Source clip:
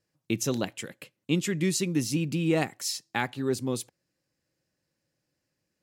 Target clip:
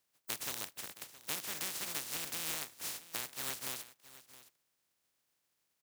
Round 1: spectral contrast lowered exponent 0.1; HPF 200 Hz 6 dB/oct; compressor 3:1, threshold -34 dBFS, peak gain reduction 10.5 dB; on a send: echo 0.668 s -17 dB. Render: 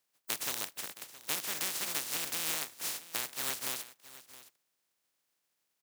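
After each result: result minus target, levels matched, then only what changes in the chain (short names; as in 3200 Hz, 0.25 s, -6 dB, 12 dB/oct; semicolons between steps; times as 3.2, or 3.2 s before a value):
compressor: peak gain reduction -4.5 dB; 125 Hz band -4.0 dB
change: compressor 3:1, threshold -40.5 dBFS, peak gain reduction 15 dB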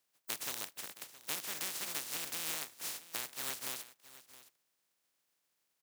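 125 Hz band -4.0 dB
change: HPF 62 Hz 6 dB/oct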